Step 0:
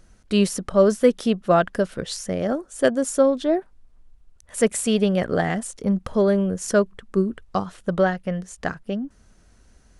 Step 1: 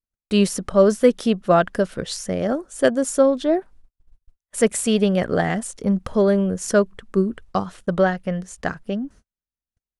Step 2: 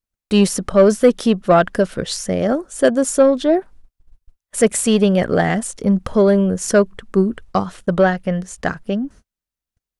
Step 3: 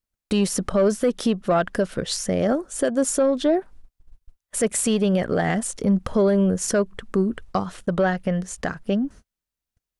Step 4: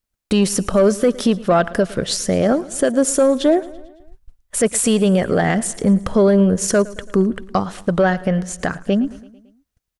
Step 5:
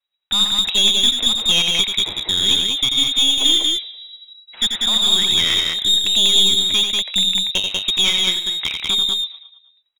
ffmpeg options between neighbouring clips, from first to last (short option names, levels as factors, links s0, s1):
-af "agate=range=0.00562:threshold=0.00562:ratio=16:detection=peak,volume=1.19"
-af "acontrast=45,volume=0.891"
-af "alimiter=limit=0.251:level=0:latency=1:release=228"
-af "aecho=1:1:111|222|333|444|555:0.1|0.058|0.0336|0.0195|0.0113,volume=1.78"
-af "lowpass=f=3300:t=q:w=0.5098,lowpass=f=3300:t=q:w=0.6013,lowpass=f=3300:t=q:w=0.9,lowpass=f=3300:t=q:w=2.563,afreqshift=-3900,aeval=exprs='clip(val(0),-1,0.158)':c=same,aecho=1:1:87.46|192.4:0.501|0.708,volume=0.891"